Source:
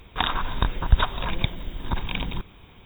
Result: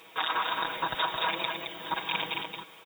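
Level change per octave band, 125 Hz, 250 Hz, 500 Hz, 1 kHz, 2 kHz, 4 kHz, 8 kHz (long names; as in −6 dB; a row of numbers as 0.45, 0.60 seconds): −23.0 dB, −9.5 dB, −1.0 dB, +0.5 dB, +0.5 dB, −0.5 dB, can't be measured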